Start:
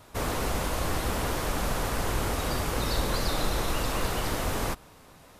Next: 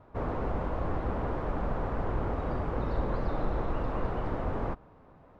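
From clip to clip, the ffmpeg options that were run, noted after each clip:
-af "lowpass=1100,volume=0.841"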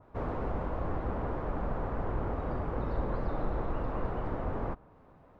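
-af "adynamicequalizer=threshold=0.00158:dfrequency=2500:dqfactor=0.7:tfrequency=2500:tqfactor=0.7:attack=5:release=100:ratio=0.375:range=2.5:mode=cutabove:tftype=highshelf,volume=0.794"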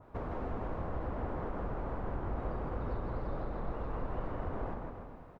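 -filter_complex "[0:a]acompressor=threshold=0.0141:ratio=6,asplit=2[s0][s1];[s1]aecho=0:1:160|296|411.6|509.9|593.4:0.631|0.398|0.251|0.158|0.1[s2];[s0][s2]amix=inputs=2:normalize=0,volume=1.19"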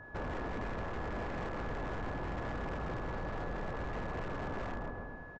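-af "aresample=16000,aeval=exprs='0.0168*(abs(mod(val(0)/0.0168+3,4)-2)-1)':c=same,aresample=44100,aeval=exprs='val(0)+0.00224*sin(2*PI*1700*n/s)':c=same,volume=1.33"

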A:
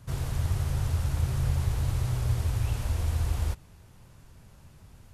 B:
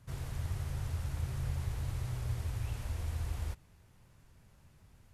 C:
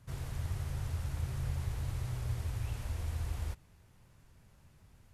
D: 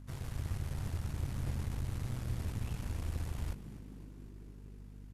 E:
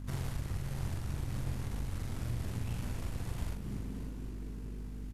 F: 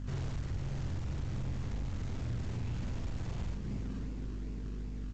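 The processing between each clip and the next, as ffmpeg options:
-af "equalizer=f=2000:t=o:w=0.72:g=3,volume=0.355"
-af anull
-filter_complex "[0:a]aeval=exprs='val(0)+0.00447*(sin(2*PI*50*n/s)+sin(2*PI*2*50*n/s)/2+sin(2*PI*3*50*n/s)/3+sin(2*PI*4*50*n/s)/4+sin(2*PI*5*50*n/s)/5)':c=same,asplit=7[s0][s1][s2][s3][s4][s5][s6];[s1]adelay=252,afreqshift=63,volume=0.178[s7];[s2]adelay=504,afreqshift=126,volume=0.108[s8];[s3]adelay=756,afreqshift=189,volume=0.0661[s9];[s4]adelay=1008,afreqshift=252,volume=0.0403[s10];[s5]adelay=1260,afreqshift=315,volume=0.0245[s11];[s6]adelay=1512,afreqshift=378,volume=0.015[s12];[s0][s7][s8][s9][s10][s11][s12]amix=inputs=7:normalize=0,aeval=exprs='0.0668*(cos(1*acos(clip(val(0)/0.0668,-1,1)))-cos(1*PI/2))+0.00668*(cos(6*acos(clip(val(0)/0.0668,-1,1)))-cos(6*PI/2))':c=same,volume=0.794"
-af "acompressor=threshold=0.01:ratio=6,aecho=1:1:44|567:0.631|0.224,volume=2.24"
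-filter_complex "[0:a]asplit=2[s0][s1];[s1]acrusher=samples=25:mix=1:aa=0.000001:lfo=1:lforange=15:lforate=2.6,volume=0.473[s2];[s0][s2]amix=inputs=2:normalize=0,asoftclip=type=tanh:threshold=0.0316" -ar 16000 -c:a g722

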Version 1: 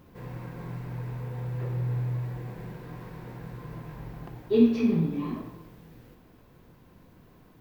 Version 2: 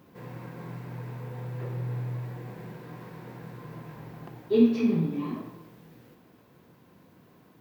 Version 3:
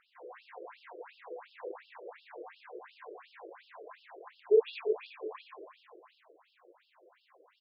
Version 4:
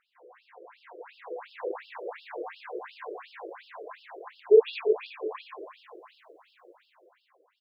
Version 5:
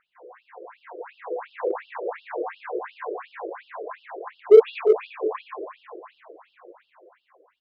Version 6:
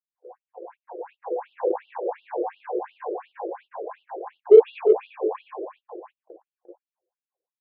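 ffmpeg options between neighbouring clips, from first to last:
-af "highpass=130"
-af "aecho=1:1:120|258|416.7|599.2|809.1:0.631|0.398|0.251|0.158|0.1,afftfilt=real='re*between(b*sr/1024,440*pow(3900/440,0.5+0.5*sin(2*PI*2.8*pts/sr))/1.41,440*pow(3900/440,0.5+0.5*sin(2*PI*2.8*pts/sr))*1.41)':imag='im*between(b*sr/1024,440*pow(3900/440,0.5+0.5*sin(2*PI*2.8*pts/sr))/1.41,440*pow(3900/440,0.5+0.5*sin(2*PI*2.8*pts/sr))*1.41)':win_size=1024:overlap=0.75,volume=1.26"
-af "dynaudnorm=f=350:g=7:m=5.62,volume=0.531"
-filter_complex "[0:a]lowpass=2000,asplit=2[s0][s1];[s1]asoftclip=type=hard:threshold=0.0631,volume=0.355[s2];[s0][s2]amix=inputs=2:normalize=0,volume=1.78"
-af "agate=range=0.0178:threshold=0.00562:ratio=16:detection=peak,highpass=240,equalizer=f=350:t=q:w=4:g=8,equalizer=f=530:t=q:w=4:g=6,equalizer=f=810:t=q:w=4:g=9,equalizer=f=1300:t=q:w=4:g=-8,equalizer=f=2000:t=q:w=4:g=-7,lowpass=f=3400:w=0.5412,lowpass=f=3400:w=1.3066,volume=0.668"

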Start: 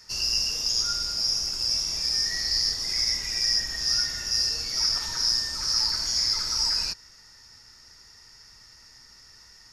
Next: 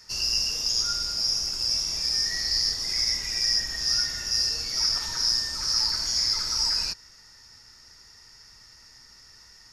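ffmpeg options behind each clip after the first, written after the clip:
-af anull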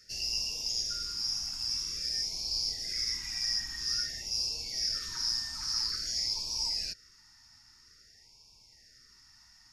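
-af "afftfilt=real='re*(1-between(b*sr/1024,450*pow(1600/450,0.5+0.5*sin(2*PI*0.5*pts/sr))/1.41,450*pow(1600/450,0.5+0.5*sin(2*PI*0.5*pts/sr))*1.41))':imag='im*(1-between(b*sr/1024,450*pow(1600/450,0.5+0.5*sin(2*PI*0.5*pts/sr))/1.41,450*pow(1600/450,0.5+0.5*sin(2*PI*0.5*pts/sr))*1.41))':win_size=1024:overlap=0.75,volume=0.422"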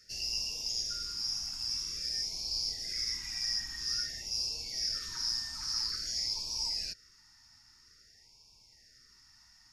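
-af "acontrast=69,volume=0.376"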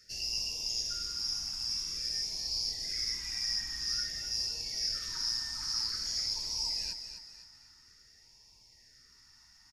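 -af "aecho=1:1:255|510|765|1020|1275:0.355|0.145|0.0596|0.0245|0.01"

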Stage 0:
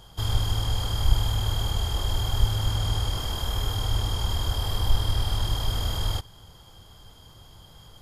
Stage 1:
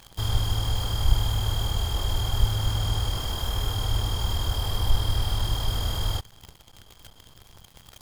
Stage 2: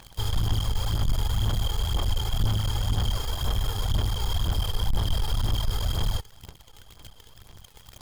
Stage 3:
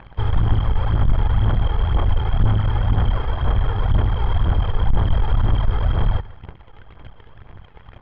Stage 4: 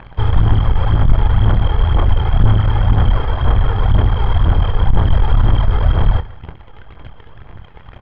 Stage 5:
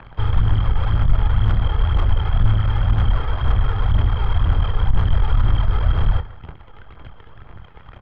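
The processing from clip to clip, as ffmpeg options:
-af "acrusher=bits=8:dc=4:mix=0:aa=0.000001"
-af "aphaser=in_gain=1:out_gain=1:delay=2.4:decay=0.49:speed=2:type=sinusoidal,aeval=exprs='(tanh(8.91*val(0)+0.4)-tanh(0.4))/8.91':c=same"
-af "lowpass=f=2200:w=0.5412,lowpass=f=2200:w=1.3066,aecho=1:1:145:0.106,volume=2.51"
-filter_complex "[0:a]asplit=2[s0][s1];[s1]adelay=26,volume=0.251[s2];[s0][s2]amix=inputs=2:normalize=0,volume=1.78"
-filter_complex "[0:a]equalizer=f=1300:t=o:w=0.32:g=5,acrossover=split=140|1500[s0][s1][s2];[s1]asoftclip=type=tanh:threshold=0.0562[s3];[s0][s3][s2]amix=inputs=3:normalize=0,volume=0.631"

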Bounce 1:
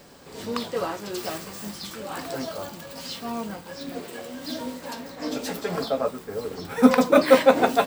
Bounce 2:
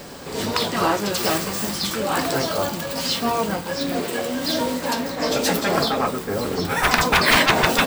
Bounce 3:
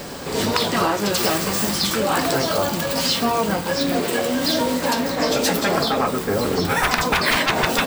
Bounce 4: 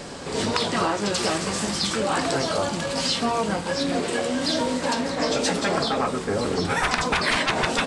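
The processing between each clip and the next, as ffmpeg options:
-af "aeval=exprs='0.841*sin(PI/2*3.98*val(0)/0.841)':c=same,afftfilt=real='re*lt(hypot(re,im),1.41)':imag='im*lt(hypot(re,im),1.41)':win_size=1024:overlap=0.75,volume=0.631"
-af "acompressor=threshold=0.0891:ratio=6,volume=1.78"
-af "aresample=22050,aresample=44100,volume=0.668"

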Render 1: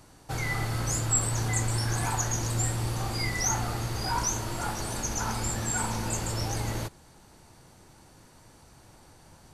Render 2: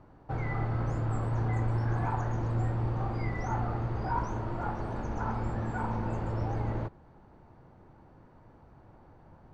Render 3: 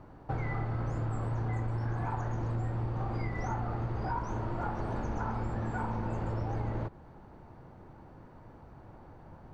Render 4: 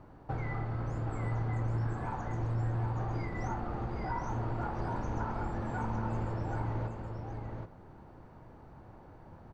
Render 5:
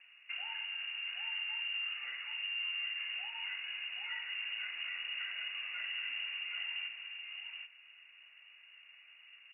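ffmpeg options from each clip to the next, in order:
-af "lowpass=1200"
-af "acompressor=threshold=0.02:ratio=6,volume=1.58"
-af "aecho=1:1:775:0.562,volume=0.794"
-af "lowpass=f=2500:t=q:w=0.5098,lowpass=f=2500:t=q:w=0.6013,lowpass=f=2500:t=q:w=0.9,lowpass=f=2500:t=q:w=2.563,afreqshift=-2900,volume=0.473"

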